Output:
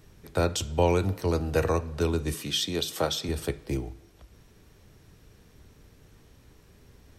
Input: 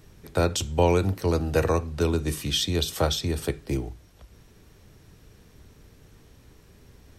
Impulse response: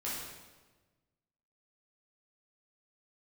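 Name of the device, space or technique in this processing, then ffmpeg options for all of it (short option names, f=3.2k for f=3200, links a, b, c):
filtered reverb send: -filter_complex "[0:a]asettb=1/sr,asplit=3[a][b][c];[a]atrim=end=2.344[d];[b]atrim=start=2.34:end=3.29,asetpts=PTS-STARTPTS,afade=t=in:d=0.004:c=qsin,afade=t=out:st=0.946:d=0.004:c=qsin,highpass=150[e];[c]atrim=start=3.286[f];[d][e]acrossfade=d=0.004:c1=hsin:c2=qsin[g];[g][f]acrossfade=d=0.004:c1=qsin:c2=hsin,asplit=2[h][i];[i]highpass=330,lowpass=4.7k[j];[1:a]atrim=start_sample=2205[k];[j][k]afir=irnorm=-1:irlink=0,volume=-19.5dB[l];[h][l]amix=inputs=2:normalize=0,volume=-2.5dB"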